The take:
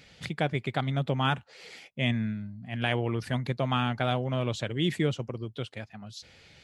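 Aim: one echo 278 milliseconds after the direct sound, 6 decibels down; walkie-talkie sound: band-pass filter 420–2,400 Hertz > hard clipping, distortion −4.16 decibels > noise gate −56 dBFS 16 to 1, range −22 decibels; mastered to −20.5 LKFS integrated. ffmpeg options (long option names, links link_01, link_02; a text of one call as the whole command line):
ffmpeg -i in.wav -af "highpass=420,lowpass=2400,aecho=1:1:278:0.501,asoftclip=type=hard:threshold=-36dB,agate=range=-22dB:threshold=-56dB:ratio=16,volume=20dB" out.wav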